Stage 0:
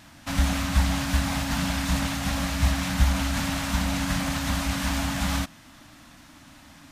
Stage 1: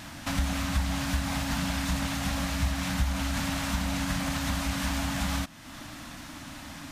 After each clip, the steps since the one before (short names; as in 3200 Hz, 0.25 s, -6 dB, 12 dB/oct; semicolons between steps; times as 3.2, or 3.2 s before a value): compressor 2:1, threshold -43 dBFS, peak gain reduction 15.5 dB; gain +7.5 dB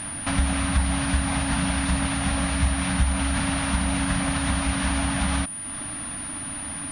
pulse-width modulation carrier 9500 Hz; gain +5.5 dB